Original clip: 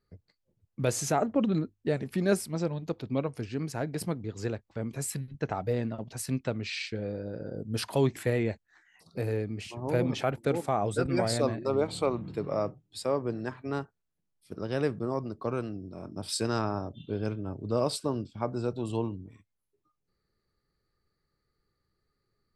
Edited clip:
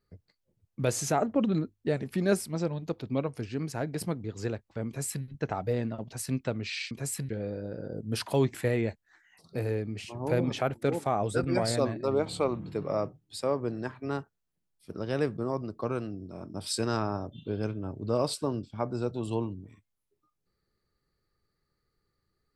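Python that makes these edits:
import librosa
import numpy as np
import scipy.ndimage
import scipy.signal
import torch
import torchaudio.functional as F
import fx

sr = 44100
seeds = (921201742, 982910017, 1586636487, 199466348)

y = fx.edit(x, sr, fx.duplicate(start_s=4.87, length_s=0.38, to_s=6.91), tone=tone)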